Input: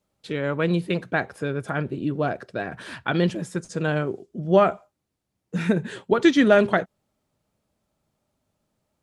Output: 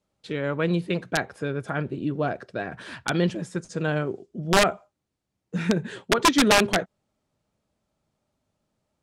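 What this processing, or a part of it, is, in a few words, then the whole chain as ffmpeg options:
overflowing digital effects unit: -af "aeval=exprs='(mod(2.99*val(0)+1,2)-1)/2.99':channel_layout=same,lowpass=9200,volume=-1.5dB"

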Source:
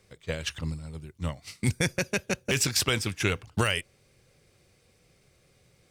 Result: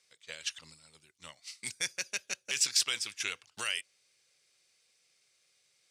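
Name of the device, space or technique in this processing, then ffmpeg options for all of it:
piezo pickup straight into a mixer: -af "lowpass=6200,aderivative,volume=4dB"

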